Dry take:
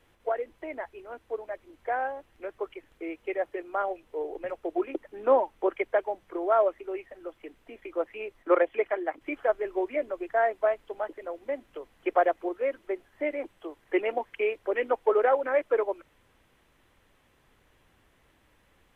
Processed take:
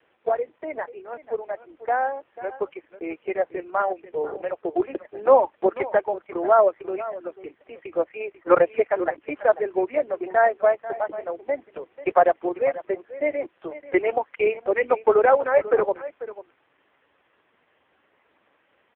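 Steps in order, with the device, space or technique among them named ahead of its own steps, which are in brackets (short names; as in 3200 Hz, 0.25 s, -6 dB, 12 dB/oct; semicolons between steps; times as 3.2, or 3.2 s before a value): satellite phone (BPF 320–3100 Hz; echo 0.492 s -15 dB; gain +7.5 dB; AMR-NB 5.15 kbps 8000 Hz)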